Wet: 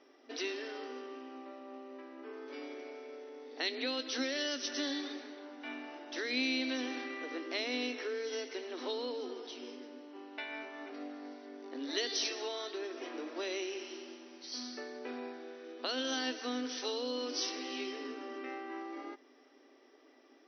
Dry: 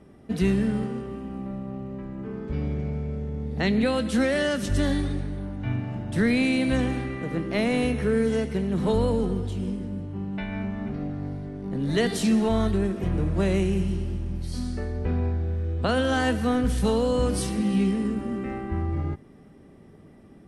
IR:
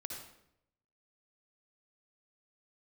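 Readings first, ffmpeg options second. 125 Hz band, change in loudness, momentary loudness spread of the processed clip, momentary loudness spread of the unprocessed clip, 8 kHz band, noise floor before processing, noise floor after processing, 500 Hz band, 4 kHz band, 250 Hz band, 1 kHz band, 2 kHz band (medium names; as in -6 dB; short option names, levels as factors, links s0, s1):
under -40 dB, -12.5 dB, 14 LU, 10 LU, -4.5 dB, -50 dBFS, -63 dBFS, -12.5 dB, -0.5 dB, -17.0 dB, -11.0 dB, -7.5 dB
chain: -filter_complex "[0:a]acrossover=split=360|3000[s0][s1][s2];[s1]acompressor=threshold=0.02:ratio=6[s3];[s0][s3][s2]amix=inputs=3:normalize=0,aemphasis=mode=production:type=riaa,afftfilt=real='re*between(b*sr/4096,240,6100)':imag='im*between(b*sr/4096,240,6100)':win_size=4096:overlap=0.75,volume=0.562"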